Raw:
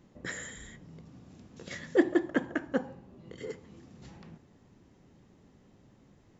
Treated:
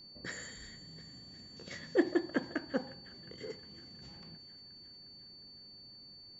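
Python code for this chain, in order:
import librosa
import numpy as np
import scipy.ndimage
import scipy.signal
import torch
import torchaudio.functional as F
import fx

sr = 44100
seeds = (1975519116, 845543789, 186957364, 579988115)

y = fx.echo_wet_highpass(x, sr, ms=358, feedback_pct=68, hz=1700.0, wet_db=-15.5)
y = y + 10.0 ** (-47.0 / 20.0) * np.sin(2.0 * np.pi * 4500.0 * np.arange(len(y)) / sr)
y = F.gain(torch.from_numpy(y), -4.5).numpy()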